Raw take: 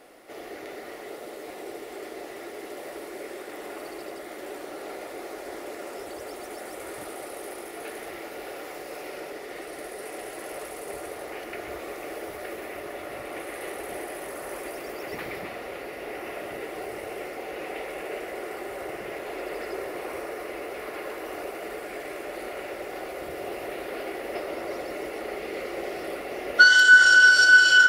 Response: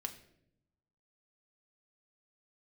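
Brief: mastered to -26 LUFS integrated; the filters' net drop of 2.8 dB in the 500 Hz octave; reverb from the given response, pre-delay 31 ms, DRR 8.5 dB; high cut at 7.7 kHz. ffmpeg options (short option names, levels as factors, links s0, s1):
-filter_complex "[0:a]lowpass=7700,equalizer=f=500:t=o:g=-3.5,asplit=2[s0][s1];[1:a]atrim=start_sample=2205,adelay=31[s2];[s1][s2]afir=irnorm=-1:irlink=0,volume=0.473[s3];[s0][s3]amix=inputs=2:normalize=0,volume=0.794"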